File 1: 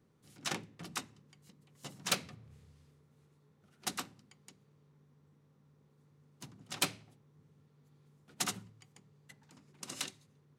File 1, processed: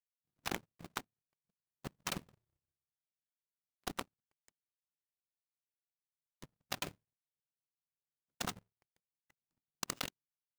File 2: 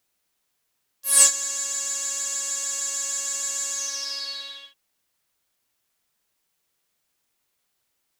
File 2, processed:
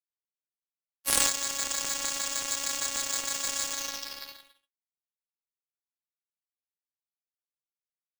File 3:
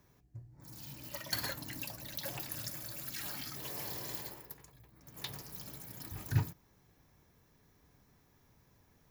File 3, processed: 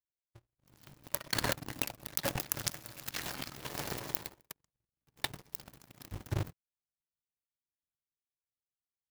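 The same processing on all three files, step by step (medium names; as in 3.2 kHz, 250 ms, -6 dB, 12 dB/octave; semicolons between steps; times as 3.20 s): square wave that keeps the level; power-law waveshaper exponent 3; level flattener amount 100%; trim -7.5 dB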